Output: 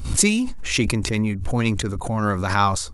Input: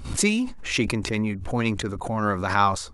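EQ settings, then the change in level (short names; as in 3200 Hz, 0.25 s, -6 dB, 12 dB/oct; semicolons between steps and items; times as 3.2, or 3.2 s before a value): low shelf 160 Hz +8.5 dB; high shelf 4900 Hz +9.5 dB; 0.0 dB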